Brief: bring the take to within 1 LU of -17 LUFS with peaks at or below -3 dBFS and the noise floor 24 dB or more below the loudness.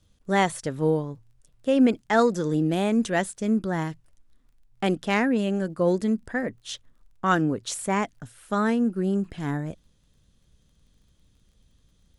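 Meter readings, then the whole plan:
ticks 21/s; loudness -25.0 LUFS; peak -7.5 dBFS; loudness target -17.0 LUFS
-> de-click; gain +8 dB; limiter -3 dBFS

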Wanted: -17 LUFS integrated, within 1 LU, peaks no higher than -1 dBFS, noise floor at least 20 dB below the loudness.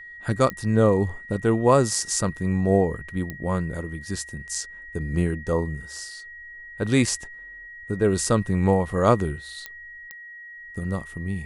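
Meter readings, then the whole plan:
clicks 4; steady tone 1900 Hz; tone level -39 dBFS; loudness -24.0 LUFS; peak -4.5 dBFS; loudness target -17.0 LUFS
-> de-click; notch 1900 Hz, Q 30; gain +7 dB; limiter -1 dBFS

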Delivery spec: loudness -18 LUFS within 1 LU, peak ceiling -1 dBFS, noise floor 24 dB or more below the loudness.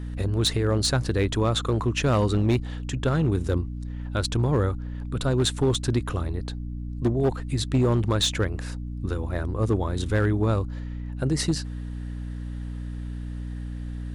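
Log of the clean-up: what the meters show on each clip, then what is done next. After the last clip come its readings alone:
clipped 1.2%; flat tops at -15.5 dBFS; hum 60 Hz; harmonics up to 300 Hz; hum level -30 dBFS; loudness -26.0 LUFS; peak -15.5 dBFS; loudness target -18.0 LUFS
-> clip repair -15.5 dBFS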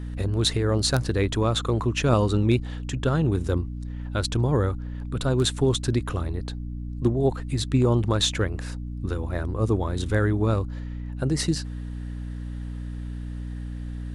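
clipped 0.0%; hum 60 Hz; harmonics up to 300 Hz; hum level -30 dBFS
-> de-hum 60 Hz, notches 5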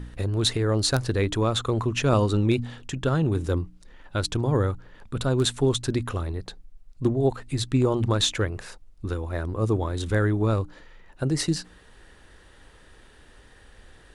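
hum none; loudness -25.5 LUFS; peak -7.5 dBFS; loudness target -18.0 LUFS
-> gain +7.5 dB; limiter -1 dBFS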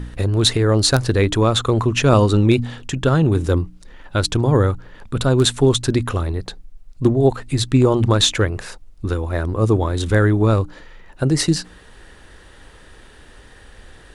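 loudness -18.0 LUFS; peak -1.0 dBFS; noise floor -45 dBFS

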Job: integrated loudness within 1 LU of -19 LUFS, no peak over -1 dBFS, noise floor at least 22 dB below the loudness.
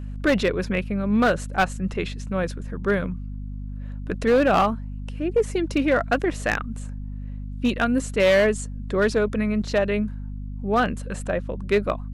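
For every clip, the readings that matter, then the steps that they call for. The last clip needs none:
clipped 1.1%; flat tops at -13.0 dBFS; hum 50 Hz; harmonics up to 250 Hz; hum level -30 dBFS; loudness -23.5 LUFS; peak -13.0 dBFS; loudness target -19.0 LUFS
-> clip repair -13 dBFS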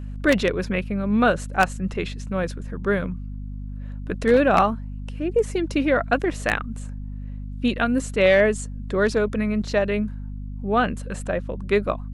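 clipped 0.0%; hum 50 Hz; harmonics up to 250 Hz; hum level -30 dBFS
-> de-hum 50 Hz, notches 5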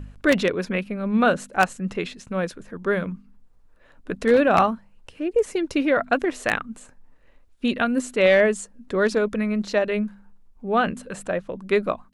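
hum none; loudness -23.0 LUFS; peak -3.5 dBFS; loudness target -19.0 LUFS
-> gain +4 dB; limiter -1 dBFS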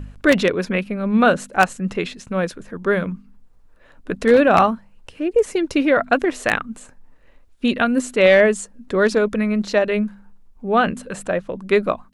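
loudness -19.0 LUFS; peak -1.0 dBFS; noise floor -50 dBFS

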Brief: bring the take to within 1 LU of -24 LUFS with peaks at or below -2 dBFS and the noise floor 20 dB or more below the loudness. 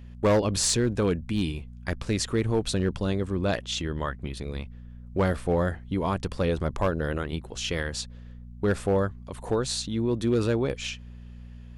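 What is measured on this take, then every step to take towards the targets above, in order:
clipped 0.8%; flat tops at -16.5 dBFS; hum 60 Hz; harmonics up to 240 Hz; hum level -41 dBFS; loudness -27.5 LUFS; peak -16.5 dBFS; loudness target -24.0 LUFS
-> clip repair -16.5 dBFS; de-hum 60 Hz, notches 4; gain +3.5 dB

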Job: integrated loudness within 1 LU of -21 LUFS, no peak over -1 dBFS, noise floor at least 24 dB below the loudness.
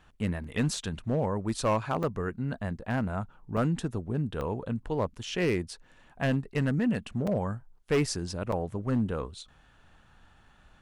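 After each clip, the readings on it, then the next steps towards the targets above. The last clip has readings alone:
clipped 0.9%; flat tops at -20.0 dBFS; dropouts 7; longest dropout 4.2 ms; loudness -31.0 LUFS; peak -20.0 dBFS; loudness target -21.0 LUFS
-> clip repair -20 dBFS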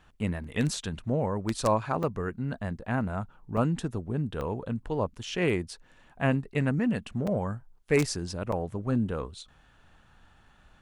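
clipped 0.0%; dropouts 7; longest dropout 4.2 ms
-> interpolate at 0.44/2.03/3.57/4.41/5.23/7.27/8.52, 4.2 ms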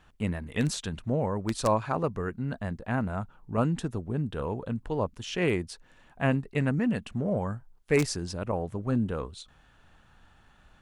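dropouts 0; loudness -30.0 LUFS; peak -11.0 dBFS; loudness target -21.0 LUFS
-> gain +9 dB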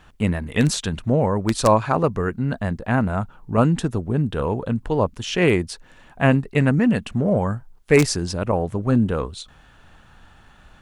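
loudness -21.0 LUFS; peak -2.0 dBFS; noise floor -51 dBFS

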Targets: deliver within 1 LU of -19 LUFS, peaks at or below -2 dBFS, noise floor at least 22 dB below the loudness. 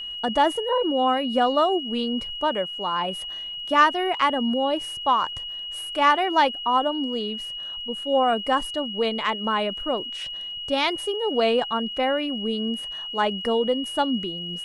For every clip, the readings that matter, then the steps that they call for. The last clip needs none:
ticks 55/s; steady tone 2900 Hz; tone level -31 dBFS; loudness -24.0 LUFS; peak -5.0 dBFS; loudness target -19.0 LUFS
-> de-click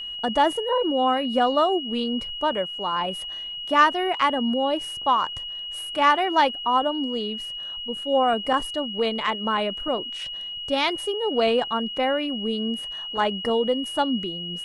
ticks 0.068/s; steady tone 2900 Hz; tone level -31 dBFS
-> notch 2900 Hz, Q 30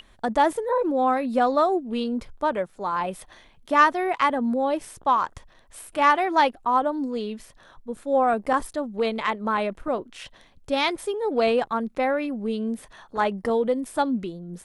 steady tone none; loudness -24.0 LUFS; peak -5.5 dBFS; loudness target -19.0 LUFS
-> gain +5 dB; limiter -2 dBFS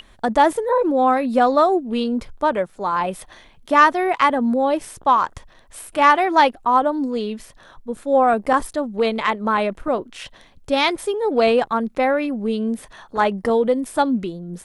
loudness -19.5 LUFS; peak -2.0 dBFS; noise floor -50 dBFS

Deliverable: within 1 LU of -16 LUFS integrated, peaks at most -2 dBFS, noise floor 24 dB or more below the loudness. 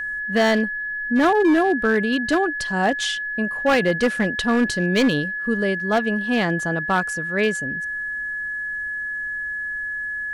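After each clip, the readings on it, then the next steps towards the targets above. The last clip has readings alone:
clipped 1.2%; flat tops at -12.5 dBFS; steady tone 1700 Hz; tone level -25 dBFS; loudness -21.5 LUFS; peak -12.5 dBFS; loudness target -16.0 LUFS
-> clip repair -12.5 dBFS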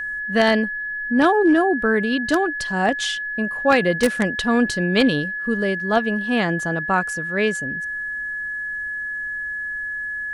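clipped 0.0%; steady tone 1700 Hz; tone level -25 dBFS
-> notch 1700 Hz, Q 30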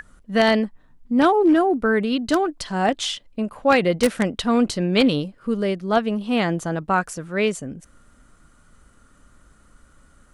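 steady tone none; loudness -21.0 LUFS; peak -3.5 dBFS; loudness target -16.0 LUFS
-> gain +5 dB; limiter -2 dBFS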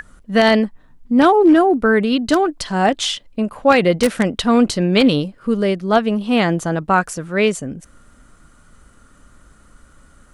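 loudness -16.5 LUFS; peak -2.0 dBFS; noise floor -50 dBFS

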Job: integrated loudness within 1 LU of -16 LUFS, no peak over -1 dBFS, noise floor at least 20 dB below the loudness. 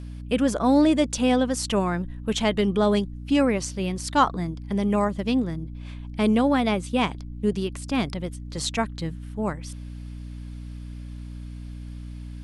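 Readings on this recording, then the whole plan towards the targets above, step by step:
hum 60 Hz; harmonics up to 300 Hz; hum level -34 dBFS; loudness -24.5 LUFS; peak -6.0 dBFS; loudness target -16.0 LUFS
-> notches 60/120/180/240/300 Hz; gain +8.5 dB; limiter -1 dBFS

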